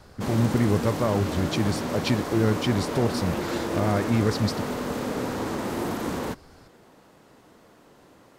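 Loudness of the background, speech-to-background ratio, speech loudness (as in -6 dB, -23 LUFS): -30.0 LUFS, 4.0 dB, -26.0 LUFS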